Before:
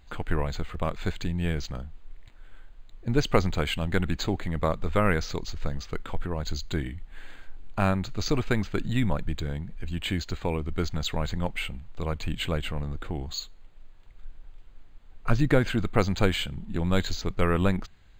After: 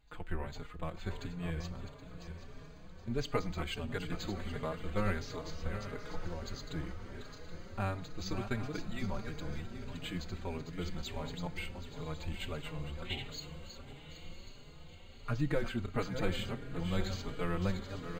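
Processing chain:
feedback delay that plays each chunk backwards 387 ms, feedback 55%, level −8 dB
gain on a spectral selection 0:13.05–0:13.29, 1,800–4,200 Hz +12 dB
feedback delay with all-pass diffusion 1,043 ms, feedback 62%, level −13 dB
convolution reverb, pre-delay 3 ms, DRR 15.5 dB
barber-pole flanger 4.4 ms +1.5 Hz
level −8.5 dB

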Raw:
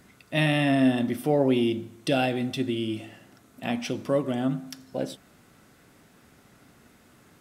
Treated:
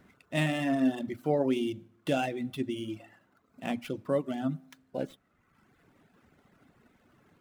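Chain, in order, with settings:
running median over 9 samples
mains-hum notches 60/120 Hz
reverb reduction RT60 1.1 s
level −3.5 dB

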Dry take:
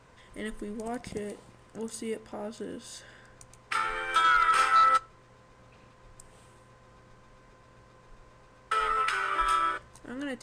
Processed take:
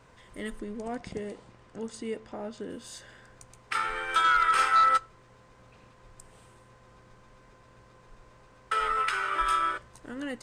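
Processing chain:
0:00.59–0:02.70: Bessel low-pass filter 6,200 Hz, order 4

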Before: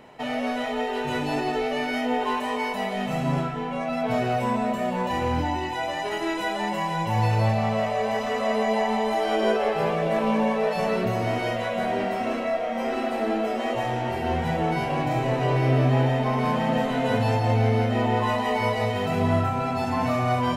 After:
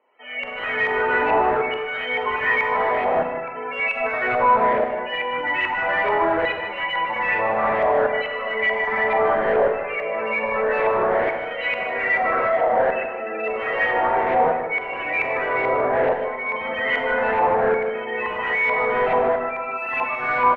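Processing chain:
high-pass filter 160 Hz 6 dB per octave
bass and treble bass −4 dB, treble −10 dB
gate on every frequency bin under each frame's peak −20 dB strong
flat-topped bell 1,100 Hz −13.5 dB
automatic gain control gain up to 13 dB
brickwall limiter −11 dBFS, peak gain reduction 7 dB
auto-filter band-pass saw down 0.62 Hz 610–6,800 Hz
mid-hump overdrive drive 28 dB, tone 1,800 Hz, clips at −12.5 dBFS
auto-filter low-pass saw up 2.3 Hz 990–2,300 Hz
multi-tap delay 153/258 ms −10.5/−18.5 dB
on a send at −6 dB: convolution reverb RT60 0.90 s, pre-delay 32 ms
on the sum: level −2.5 dB

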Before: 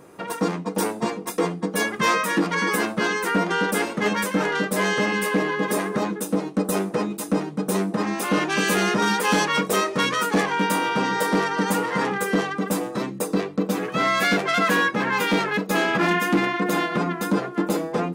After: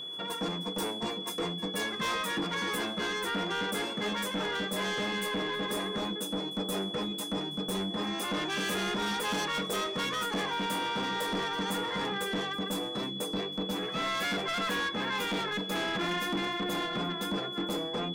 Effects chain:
echo ahead of the sound 176 ms −23 dB
soft clipping −22 dBFS, distortion −10 dB
steady tone 3,400 Hz −31 dBFS
level −6.5 dB

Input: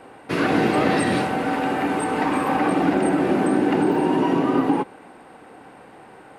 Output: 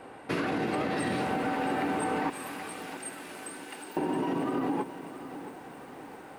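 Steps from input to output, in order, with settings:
0:02.30–0:03.97: first difference
brickwall limiter −14.5 dBFS, peak gain reduction 7.5 dB
downward compressor, threshold −24 dBFS, peak gain reduction 5.5 dB
feedback echo at a low word length 671 ms, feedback 55%, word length 8 bits, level −12.5 dB
level −2.5 dB

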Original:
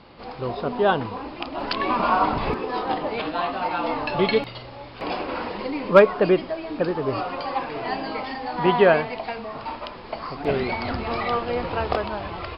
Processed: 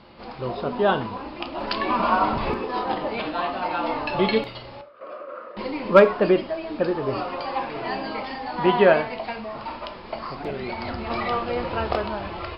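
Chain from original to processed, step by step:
0:04.81–0:05.57: pair of resonant band-passes 840 Hz, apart 1.1 octaves
0:10.31–0:11.10: downward compressor, threshold −26 dBFS, peak gain reduction 8.5 dB
reverb whose tail is shaped and stops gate 120 ms falling, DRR 8 dB
level −1 dB

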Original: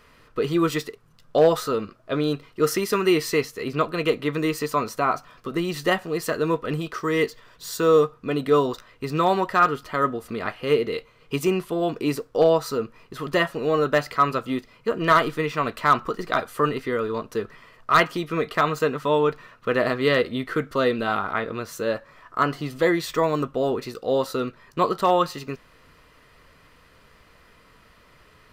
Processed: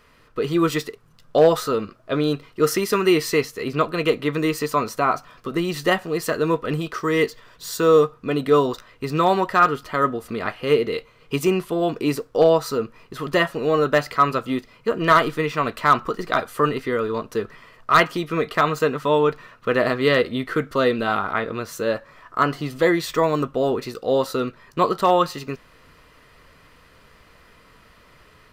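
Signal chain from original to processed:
automatic gain control gain up to 3.5 dB
level −1 dB

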